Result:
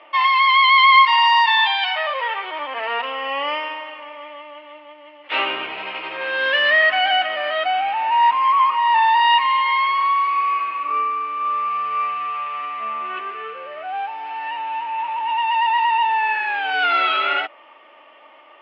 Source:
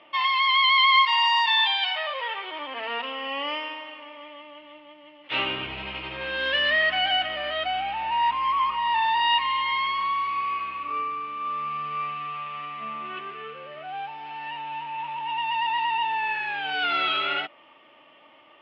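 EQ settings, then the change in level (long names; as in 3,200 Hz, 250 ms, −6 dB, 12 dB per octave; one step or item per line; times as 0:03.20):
band-pass filter 460–4,900 Hz
parametric band 3,400 Hz −6.5 dB 0.88 octaves
+8.5 dB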